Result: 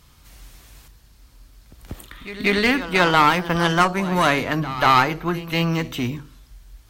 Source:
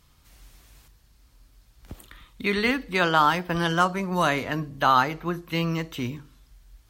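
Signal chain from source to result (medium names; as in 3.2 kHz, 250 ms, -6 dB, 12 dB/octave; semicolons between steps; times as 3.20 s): single-diode clipper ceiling -21.5 dBFS; reverse echo 189 ms -15 dB; trim +7 dB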